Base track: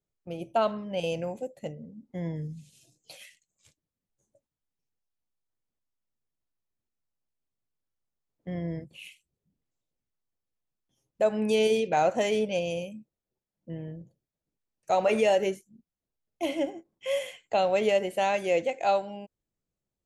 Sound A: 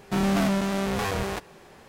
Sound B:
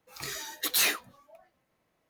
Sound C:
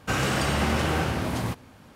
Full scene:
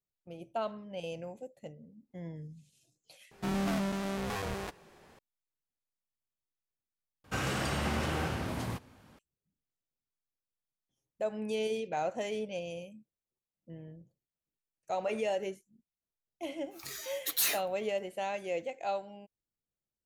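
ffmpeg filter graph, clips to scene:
-filter_complex "[0:a]volume=0.335[s0];[2:a]highshelf=f=6900:g=8[s1];[s0]asplit=3[s2][s3][s4];[s2]atrim=end=3.314[s5];[1:a]atrim=end=1.88,asetpts=PTS-STARTPTS,volume=0.376[s6];[s3]atrim=start=5.186:end=7.244[s7];[3:a]atrim=end=1.95,asetpts=PTS-STARTPTS,volume=0.398[s8];[s4]atrim=start=9.186[s9];[s1]atrim=end=2.09,asetpts=PTS-STARTPTS,volume=0.376,afade=t=in:d=0.004:c=hsin,afade=t=out:st=2.086:d=0.004:c=hsin,adelay=16630[s10];[s5][s6]acrossfade=d=0.004:c1=hsin:c2=hsin[s11];[s11][s7]acrossfade=d=0.004:c1=hsin:c2=hsin[s12];[s12][s8]acrossfade=d=0.004:c1=hsin:c2=hsin[s13];[s13][s9]acrossfade=d=0.004:c1=hsin:c2=hsin[s14];[s14][s10]amix=inputs=2:normalize=0"

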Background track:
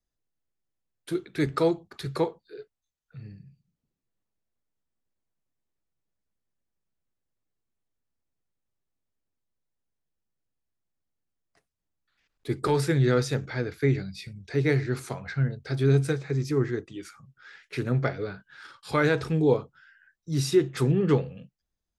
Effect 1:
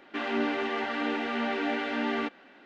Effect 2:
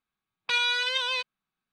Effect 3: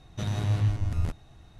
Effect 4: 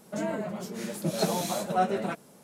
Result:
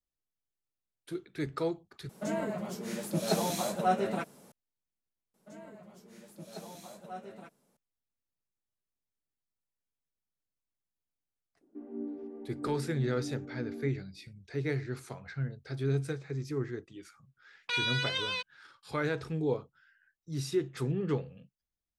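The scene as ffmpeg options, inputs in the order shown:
-filter_complex "[4:a]asplit=2[s0][s1];[0:a]volume=0.355[s2];[1:a]lowpass=f=330:t=q:w=2[s3];[2:a]dynaudnorm=f=110:g=7:m=3.16[s4];[s2]asplit=2[s5][s6];[s5]atrim=end=2.094[s7];[s0]atrim=end=2.43,asetpts=PTS-STARTPTS,volume=0.794[s8];[s6]atrim=start=4.516[s9];[s1]atrim=end=2.43,asetpts=PTS-STARTPTS,volume=0.126,afade=t=in:d=0.004:c=hsin,afade=t=out:st=2.426:d=0.004:c=hsin,adelay=5340[s10];[s3]atrim=end=2.65,asetpts=PTS-STARTPTS,volume=0.211,afade=t=in:d=0.004:c=hsin,afade=t=out:st=2.646:d=0.004:c=hsin,adelay=11610[s11];[s4]atrim=end=1.72,asetpts=PTS-STARTPTS,volume=0.168,afade=t=in:d=0.004:c=hsin,afade=t=out:st=1.716:d=0.004:c=hsin,adelay=17200[s12];[s7][s8]acrossfade=d=0.004:c1=hsin:c2=hsin[s13];[s13][s9]acrossfade=d=0.004:c1=hsin:c2=hsin[s14];[s14][s10][s11][s12]amix=inputs=4:normalize=0"

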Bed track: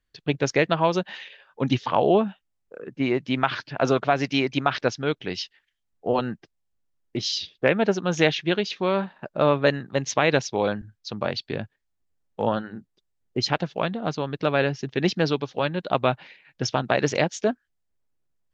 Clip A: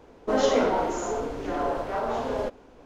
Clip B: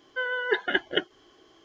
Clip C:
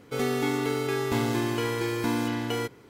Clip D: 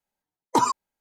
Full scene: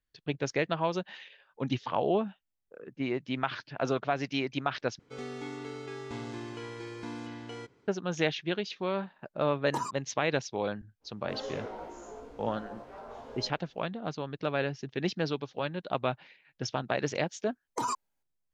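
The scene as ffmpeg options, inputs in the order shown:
-filter_complex "[4:a]asplit=2[s0][s1];[0:a]volume=0.376[s2];[3:a]lowpass=f=7300:w=0.5412,lowpass=f=7300:w=1.3066[s3];[1:a]flanger=delay=17:depth=2:speed=2.1[s4];[s1]acompressor=threshold=0.0447:ratio=10:attack=4.6:release=22:knee=1:detection=rms[s5];[s2]asplit=2[s6][s7];[s6]atrim=end=4.994[s8];[s3]atrim=end=2.89,asetpts=PTS-STARTPTS,volume=0.224[s9];[s7]atrim=start=7.876[s10];[s0]atrim=end=1,asetpts=PTS-STARTPTS,volume=0.224,afade=t=in:d=0.004:c=hsin,afade=t=out:st=0.996:d=0.004:c=hsin,adelay=9190[s11];[s4]atrim=end=2.85,asetpts=PTS-STARTPTS,volume=0.2,afade=t=in:d=0.05,afade=t=out:st=2.8:d=0.05,adelay=11000[s12];[s5]atrim=end=1,asetpts=PTS-STARTPTS,volume=0.794,afade=t=in:d=0.004:c=hsin,afade=t=out:st=0.996:d=0.004:c=hsin,adelay=17230[s13];[s8][s9]acrossfade=d=0.004:c1=hsin:c2=hsin[s14];[s14][s10]acrossfade=d=0.004:c1=hsin:c2=hsin[s15];[s15][s11][s12][s13]amix=inputs=4:normalize=0"

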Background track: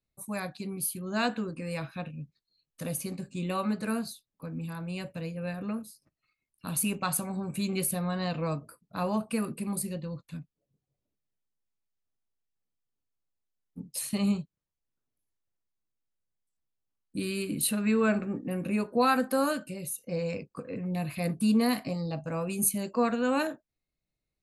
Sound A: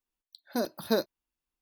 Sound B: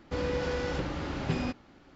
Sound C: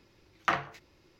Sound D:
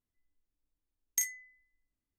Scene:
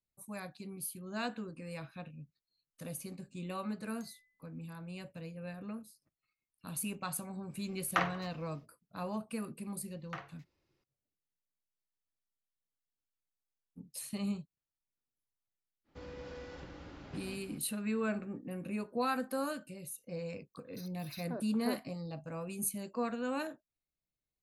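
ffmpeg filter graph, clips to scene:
-filter_complex "[3:a]asplit=2[s0][s1];[0:a]volume=0.355[s2];[4:a]acompressor=threshold=0.00708:ratio=6:attack=3.2:release=140:knee=1:detection=peak[s3];[s0]asplit=5[s4][s5][s6][s7][s8];[s5]adelay=93,afreqshift=-34,volume=0.1[s9];[s6]adelay=186,afreqshift=-68,volume=0.0531[s10];[s7]adelay=279,afreqshift=-102,volume=0.0282[s11];[s8]adelay=372,afreqshift=-136,volume=0.015[s12];[s4][s9][s10][s11][s12]amix=inputs=5:normalize=0[s13];[2:a]aecho=1:1:227:0.422[s14];[1:a]acrossover=split=2300[s15][s16];[s15]adelay=540[s17];[s17][s16]amix=inputs=2:normalize=0[s18];[s3]atrim=end=2.18,asetpts=PTS-STARTPTS,volume=0.15,afade=t=in:d=0.004:c=hsin,afade=t=out:st=2.176:d=0.004:c=hsin,adelay=2830[s19];[s13]atrim=end=1.19,asetpts=PTS-STARTPTS,volume=0.708,afade=t=in:d=0.1,afade=t=out:st=1.09:d=0.1,adelay=7480[s20];[s1]atrim=end=1.19,asetpts=PTS-STARTPTS,volume=0.141,afade=t=in:d=0.004:c=hsin,afade=t=out:st=1.186:d=0.004:c=hsin,adelay=9650[s21];[s14]atrim=end=1.95,asetpts=PTS-STARTPTS,volume=0.15,afade=t=in:d=0.05,afade=t=out:st=1.9:d=0.05,adelay=15840[s22];[s18]atrim=end=1.61,asetpts=PTS-STARTPTS,volume=0.266,afade=t=in:d=0.004:c=hsin,afade=t=out:st=1.606:d=0.004:c=hsin,adelay=20210[s23];[s2][s19][s20][s21][s22][s23]amix=inputs=6:normalize=0"

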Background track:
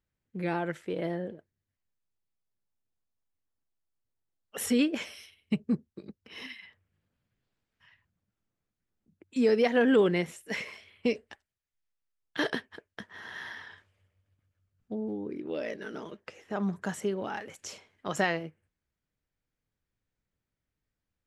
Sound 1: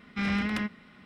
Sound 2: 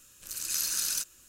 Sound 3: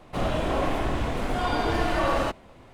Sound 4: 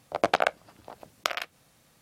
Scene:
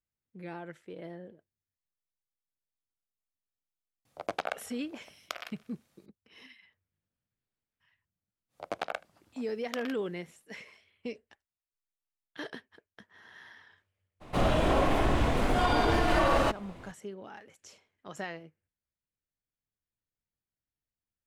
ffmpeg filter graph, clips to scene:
-filter_complex "[4:a]asplit=2[s0][s1];[0:a]volume=0.282[s2];[s0]aecho=1:1:97|194|291|388:0.0891|0.0463|0.0241|0.0125[s3];[s1]aecho=1:1:77:0.0631[s4];[3:a]alimiter=level_in=5.96:limit=0.891:release=50:level=0:latency=1[s5];[s3]atrim=end=2.01,asetpts=PTS-STARTPTS,volume=0.299,afade=t=in:d=0.004:c=hsin,afade=t=out:st=2.006:d=0.004:c=hsin,adelay=178605S[s6];[s4]atrim=end=2.01,asetpts=PTS-STARTPTS,volume=0.251,afade=t=in:d=0.1,afade=t=out:st=1.91:d=0.1,adelay=8480[s7];[s5]atrim=end=2.73,asetpts=PTS-STARTPTS,volume=0.188,afade=t=in:d=0.02,afade=t=out:st=2.71:d=0.02,adelay=14200[s8];[s2][s6][s7][s8]amix=inputs=4:normalize=0"

